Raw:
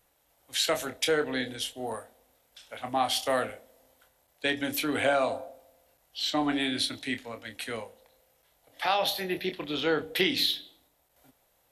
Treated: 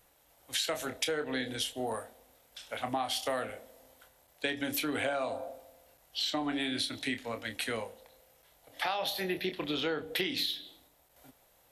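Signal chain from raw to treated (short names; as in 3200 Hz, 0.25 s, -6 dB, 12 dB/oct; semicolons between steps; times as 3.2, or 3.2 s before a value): compressor 5:1, threshold -34 dBFS, peak gain reduction 12.5 dB; gain +3.5 dB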